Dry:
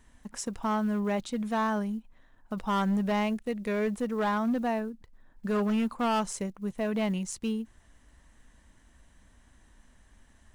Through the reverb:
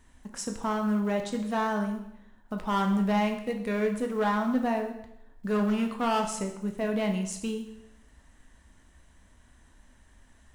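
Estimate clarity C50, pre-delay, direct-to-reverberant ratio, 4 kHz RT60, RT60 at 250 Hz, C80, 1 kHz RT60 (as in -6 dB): 8.0 dB, 7 ms, 4.0 dB, 0.75 s, 0.85 s, 10.5 dB, 0.80 s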